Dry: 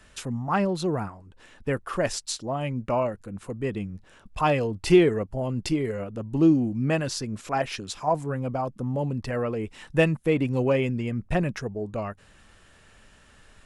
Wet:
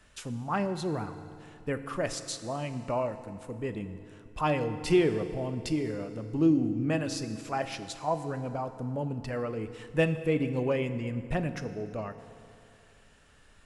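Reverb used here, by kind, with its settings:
feedback delay network reverb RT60 2.6 s, high-frequency decay 0.8×, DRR 9.5 dB
level −5.5 dB

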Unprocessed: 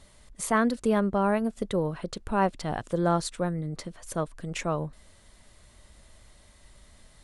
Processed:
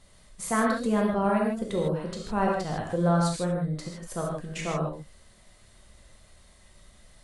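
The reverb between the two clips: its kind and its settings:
reverb whose tail is shaped and stops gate 180 ms flat, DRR −2 dB
level −4 dB

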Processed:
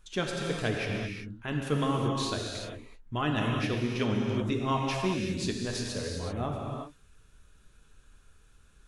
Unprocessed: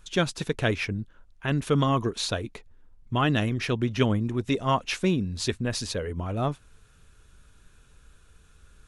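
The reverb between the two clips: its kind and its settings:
reverb whose tail is shaped and stops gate 410 ms flat, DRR −0.5 dB
level −7 dB

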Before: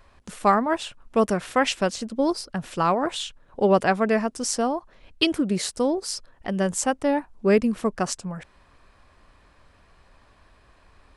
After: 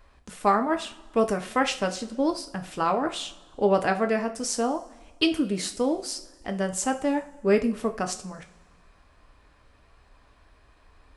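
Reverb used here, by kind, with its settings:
coupled-rooms reverb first 0.33 s, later 1.5 s, from −18 dB, DRR 5 dB
level −3.5 dB

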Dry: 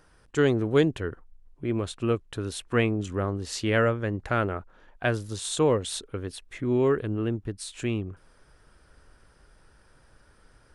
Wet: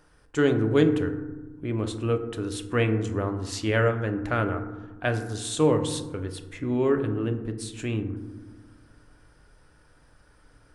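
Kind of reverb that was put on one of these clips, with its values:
feedback delay network reverb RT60 1.2 s, low-frequency decay 1.55×, high-frequency decay 0.35×, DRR 6 dB
level −1 dB

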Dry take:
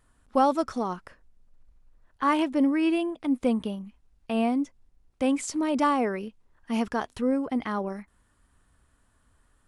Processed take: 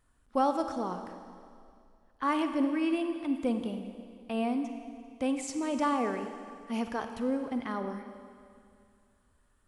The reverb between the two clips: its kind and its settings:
four-comb reverb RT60 2.3 s, DRR 7 dB
level −5.5 dB

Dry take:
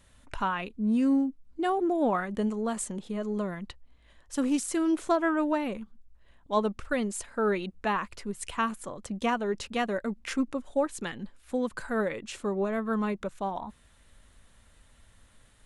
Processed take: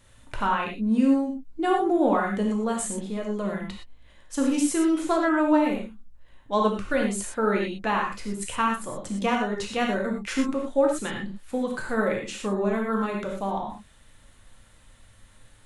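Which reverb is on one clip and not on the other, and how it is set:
reverb whose tail is shaped and stops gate 140 ms flat, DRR −0.5 dB
level +1.5 dB

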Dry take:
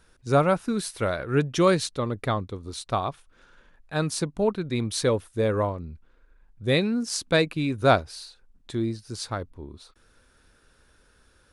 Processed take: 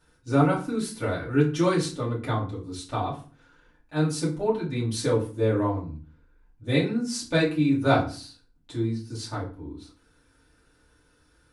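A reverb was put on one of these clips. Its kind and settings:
feedback delay network reverb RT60 0.39 s, low-frequency decay 1.5×, high-frequency decay 0.75×, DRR −7 dB
level −10 dB

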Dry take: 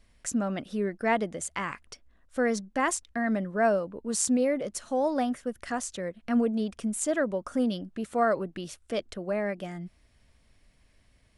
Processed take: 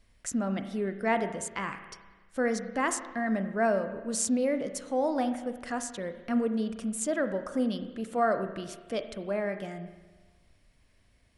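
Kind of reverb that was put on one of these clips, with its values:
spring reverb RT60 1.3 s, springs 31/41 ms, chirp 60 ms, DRR 8.5 dB
level −2 dB

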